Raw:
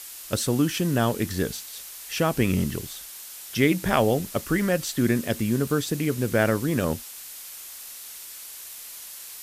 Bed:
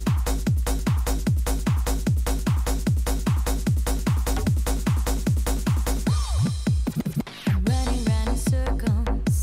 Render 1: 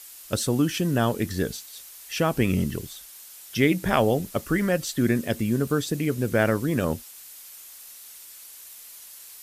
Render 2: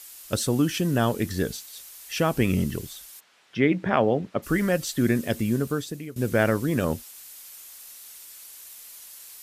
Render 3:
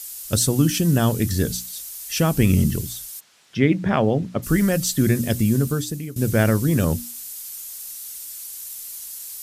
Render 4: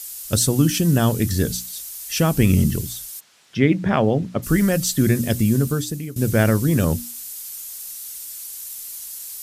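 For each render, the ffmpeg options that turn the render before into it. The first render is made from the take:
ffmpeg -i in.wav -af "afftdn=noise_reduction=6:noise_floor=-41" out.wav
ffmpeg -i in.wav -filter_complex "[0:a]asplit=3[link_01][link_02][link_03];[link_01]afade=type=out:start_time=3.19:duration=0.02[link_04];[link_02]highpass=130,lowpass=2400,afade=type=in:start_time=3.19:duration=0.02,afade=type=out:start_time=4.42:duration=0.02[link_05];[link_03]afade=type=in:start_time=4.42:duration=0.02[link_06];[link_04][link_05][link_06]amix=inputs=3:normalize=0,asplit=2[link_07][link_08];[link_07]atrim=end=6.16,asetpts=PTS-STARTPTS,afade=type=out:start_time=5.51:duration=0.65:silence=0.125893[link_09];[link_08]atrim=start=6.16,asetpts=PTS-STARTPTS,afade=type=in:duration=0.004:curve=hsin:silence=0.125893[link_10];[link_09][link_10]concat=n=2:v=0:a=1" out.wav
ffmpeg -i in.wav -af "bass=frequency=250:gain=10,treble=frequency=4000:gain=10,bandreject=frequency=60:width_type=h:width=6,bandreject=frequency=120:width_type=h:width=6,bandreject=frequency=180:width_type=h:width=6,bandreject=frequency=240:width_type=h:width=6,bandreject=frequency=300:width_type=h:width=6" out.wav
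ffmpeg -i in.wav -af "volume=1dB" out.wav

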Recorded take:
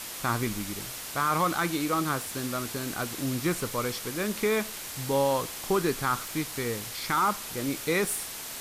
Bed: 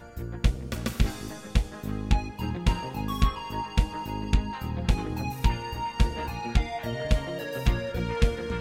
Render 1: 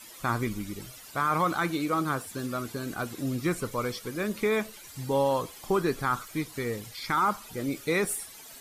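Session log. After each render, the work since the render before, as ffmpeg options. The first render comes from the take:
ffmpeg -i in.wav -af "afftdn=noise_reduction=14:noise_floor=-39" out.wav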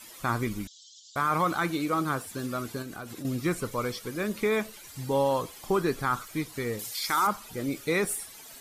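ffmpeg -i in.wav -filter_complex "[0:a]asettb=1/sr,asplit=3[link_01][link_02][link_03];[link_01]atrim=end=0.674[link_04];[link_02]atrim=start=0.67:end=1.16,asetpts=PTS-STARTPTS,afade=type=in:duration=0.004:curve=qsin,afade=type=out:start_time=0.486:duration=0.004:curve=qsin,asuperpass=centerf=4900:order=20:qfactor=1.1[link_05];[link_03]atrim=start=1.156[link_06];[link_04][link_05]acrossfade=duration=0.004:curve1=hsin:curve2=qsin[link_07];[link_07][link_06]acrossfade=duration=0.004:curve1=qsin:curve2=hsin,asettb=1/sr,asplit=3[link_08][link_09][link_10];[link_08]atrim=end=2.824[link_11];[link_09]atrim=start=2.82:end=3.25,asetpts=PTS-STARTPTS,afade=type=in:duration=0.004:curve=qsin,afade=type=out:start_time=0.426:duration=0.004:curve=qsin,acompressor=threshold=-36dB:ratio=4:attack=3.2:release=140:knee=1:detection=peak[link_12];[link_10]atrim=start=3.246[link_13];[link_11][link_12]acrossfade=duration=0.004:curve1=hsin:curve2=qsin[link_14];[link_14][link_13]acrossfade=duration=0.004:curve1=qsin:curve2=hsin,asettb=1/sr,asplit=3[link_15][link_16][link_17];[link_15]atrim=end=6.794[link_18];[link_16]atrim=start=6.79:end=7.27,asetpts=PTS-STARTPTS,afade=type=in:duration=0.004:curve=qsin,afade=type=out:start_time=0.476:duration=0.004:curve=qsin,bass=frequency=250:gain=-11,treble=frequency=4000:gain=11[link_19];[link_17]atrim=start=7.266[link_20];[link_18][link_19]acrossfade=duration=0.004:curve1=hsin:curve2=qsin[link_21];[link_21][link_20]acrossfade=duration=0.004:curve1=qsin:curve2=hsin" out.wav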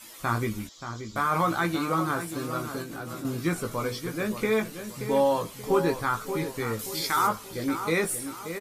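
ffmpeg -i in.wav -filter_complex "[0:a]asplit=2[link_01][link_02];[link_02]adelay=18,volume=-5.5dB[link_03];[link_01][link_03]amix=inputs=2:normalize=0,asplit=2[link_04][link_05];[link_05]adelay=579,lowpass=frequency=2100:poles=1,volume=-9dB,asplit=2[link_06][link_07];[link_07]adelay=579,lowpass=frequency=2100:poles=1,volume=0.41,asplit=2[link_08][link_09];[link_09]adelay=579,lowpass=frequency=2100:poles=1,volume=0.41,asplit=2[link_10][link_11];[link_11]adelay=579,lowpass=frequency=2100:poles=1,volume=0.41,asplit=2[link_12][link_13];[link_13]adelay=579,lowpass=frequency=2100:poles=1,volume=0.41[link_14];[link_06][link_08][link_10][link_12][link_14]amix=inputs=5:normalize=0[link_15];[link_04][link_15]amix=inputs=2:normalize=0" out.wav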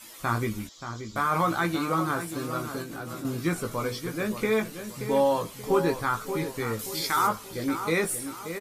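ffmpeg -i in.wav -af anull out.wav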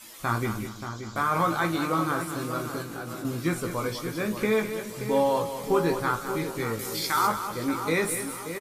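ffmpeg -i in.wav -filter_complex "[0:a]asplit=2[link_01][link_02];[link_02]adelay=48,volume=-14dB[link_03];[link_01][link_03]amix=inputs=2:normalize=0,aecho=1:1:202|404|606|808:0.316|0.101|0.0324|0.0104" out.wav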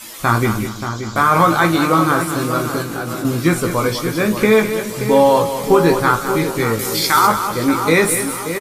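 ffmpeg -i in.wav -af "volume=12dB,alimiter=limit=-2dB:level=0:latency=1" out.wav

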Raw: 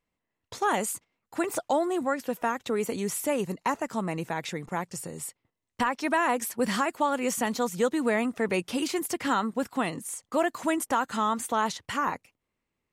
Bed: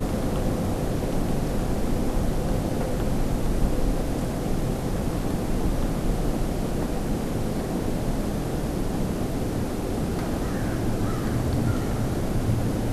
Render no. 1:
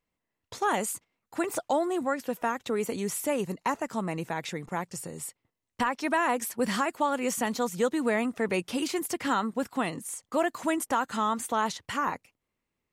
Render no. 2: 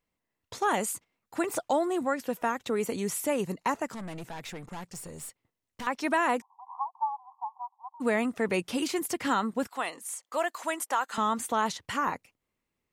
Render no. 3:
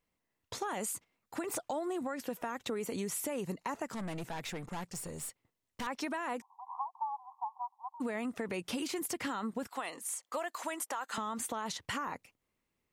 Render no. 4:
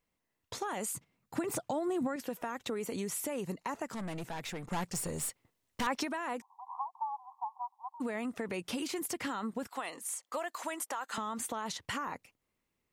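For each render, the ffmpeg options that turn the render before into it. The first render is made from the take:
ffmpeg -i in.wav -af "volume=-1dB" out.wav
ffmpeg -i in.wav -filter_complex "[0:a]asettb=1/sr,asplit=3[link_01][link_02][link_03];[link_01]atrim=end=3.944[link_04];[link_02]atrim=start=3.94:end=5.87,asetpts=PTS-STARTPTS,afade=type=in:duration=0.004:curve=qsin,afade=type=out:start_time=1.926:duration=0.004:curve=qsin,aeval=exprs='(tanh(63.1*val(0)+0.3)-tanh(0.3))/63.1':channel_layout=same[link_05];[link_03]atrim=start=5.866[link_06];[link_04][link_05]acrossfade=duration=0.004:curve1=hsin:curve2=qsin[link_07];[link_07][link_06]acrossfade=duration=0.004:curve1=qsin:curve2=hsin,asplit=3[link_08][link_09][link_10];[link_08]afade=type=out:start_time=6.4:duration=0.02[link_11];[link_09]asuperpass=centerf=910:order=12:qfactor=2.7,afade=type=in:start_time=6.4:duration=0.02,afade=type=out:start_time=8:duration=0.02[link_12];[link_10]afade=type=in:start_time=8:duration=0.02[link_13];[link_11][link_12][link_13]amix=inputs=3:normalize=0,asettb=1/sr,asplit=3[link_14][link_15][link_16];[link_14]atrim=end=9.674[link_17];[link_15]atrim=start=9.67:end=11.18,asetpts=PTS-STARTPTS,afade=type=in:duration=0.004:curve=qsin,afade=type=out:start_time=1.506:duration=0.004:curve=qsin,highpass=590[link_18];[link_16]atrim=start=11.176[link_19];[link_17][link_18]acrossfade=duration=0.004:curve1=hsin:curve2=qsin[link_20];[link_20][link_19]acrossfade=duration=0.004:curve1=qsin:curve2=hsin" out.wav
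ffmpeg -i in.wav -af "alimiter=limit=-23.5dB:level=0:latency=1:release=64,acompressor=threshold=-33dB:ratio=6" out.wav
ffmpeg -i in.wav -filter_complex "[0:a]asettb=1/sr,asplit=3[link_01][link_02][link_03];[link_01]atrim=end=0.954[link_04];[link_02]atrim=start=0.95:end=2.16,asetpts=PTS-STARTPTS,afade=type=in:duration=0.004:curve=qsin,afade=type=out:start_time=1.206:duration=0.004:curve=qsin,equalizer=frequency=140:width=0.88:gain=13.5[link_05];[link_03]atrim=start=2.156[link_06];[link_04][link_05]acrossfade=duration=0.004:curve1=hsin:curve2=qsin[link_07];[link_07][link_06]acrossfade=duration=0.004:curve1=qsin:curve2=hsin,asplit=3[link_08][link_09][link_10];[link_08]atrim=end=4.702[link_11];[link_09]atrim=start=4.698:end=6.032,asetpts=PTS-STARTPTS,volume=5.5dB[link_12];[link_10]atrim=start=6.028[link_13];[link_11][link_12]acrossfade=duration=0.004:curve1=hsin:curve2=hsin[link_14];[link_14][link_13]acrossfade=duration=0.004:curve1=hsin:curve2=hsin" out.wav

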